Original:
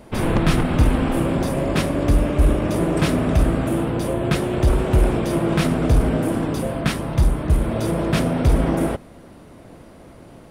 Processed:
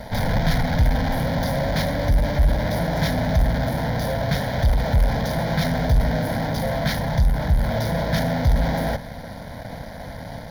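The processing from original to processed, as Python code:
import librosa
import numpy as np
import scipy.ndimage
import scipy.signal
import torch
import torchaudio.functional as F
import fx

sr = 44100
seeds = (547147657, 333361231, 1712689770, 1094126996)

p1 = fx.fuzz(x, sr, gain_db=39.0, gate_db=-47.0)
p2 = x + (p1 * 10.0 ** (-6.0 / 20.0))
p3 = fx.fixed_phaser(p2, sr, hz=1800.0, stages=8)
y = p3 * 10.0 ** (-4.0 / 20.0)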